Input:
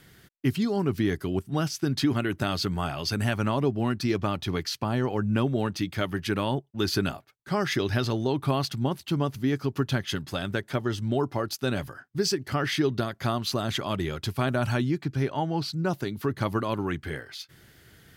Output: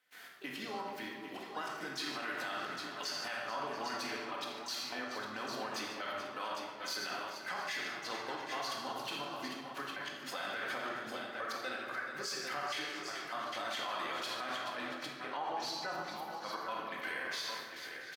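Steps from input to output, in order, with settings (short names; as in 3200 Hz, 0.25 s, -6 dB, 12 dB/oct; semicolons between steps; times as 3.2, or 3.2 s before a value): compressor 6:1, threshold -34 dBFS, peak gain reduction 14 dB; step gate ".xxxxxx.x..x.x" 125 bpm -24 dB; HPF 910 Hz 12 dB/oct; high shelf 2200 Hz -9.5 dB; tapped delay 52/83/148/431/681/803 ms -17.5/-13.5/-15.5/-13.5/-19.5/-9 dB; shoebox room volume 980 m³, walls mixed, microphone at 2 m; limiter -37 dBFS, peak gain reduction 8 dB; harmoniser +5 st -10 dB; gain +7.5 dB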